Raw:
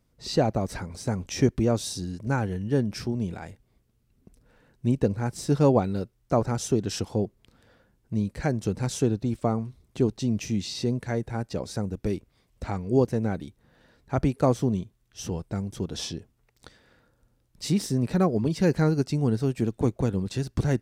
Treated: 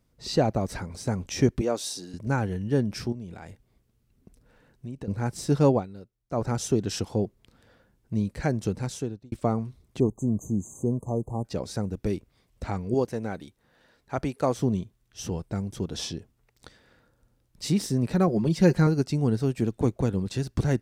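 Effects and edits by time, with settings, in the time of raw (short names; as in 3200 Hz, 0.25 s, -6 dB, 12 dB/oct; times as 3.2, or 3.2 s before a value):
1.61–2.14 HPF 350 Hz
3.12–5.08 compressor 3:1, threshold -38 dBFS
5.69–6.47 dip -14 dB, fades 0.18 s
8.65–9.32 fade out
10–11.45 brick-wall FIR band-stop 1200–6200 Hz
12.94–14.57 low shelf 290 Hz -9.5 dB
18.27–18.87 comb 5.6 ms, depth 54%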